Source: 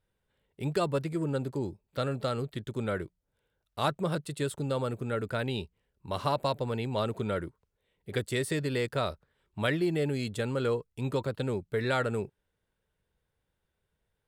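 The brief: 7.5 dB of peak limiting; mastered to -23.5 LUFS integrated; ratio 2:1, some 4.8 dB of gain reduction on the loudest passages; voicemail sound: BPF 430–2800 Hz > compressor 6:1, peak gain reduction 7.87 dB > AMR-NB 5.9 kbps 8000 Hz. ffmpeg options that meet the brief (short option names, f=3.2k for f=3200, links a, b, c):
-af "acompressor=threshold=-33dB:ratio=2,alimiter=level_in=2.5dB:limit=-24dB:level=0:latency=1,volume=-2.5dB,highpass=430,lowpass=2.8k,acompressor=threshold=-41dB:ratio=6,volume=24.5dB" -ar 8000 -c:a libopencore_amrnb -b:a 5900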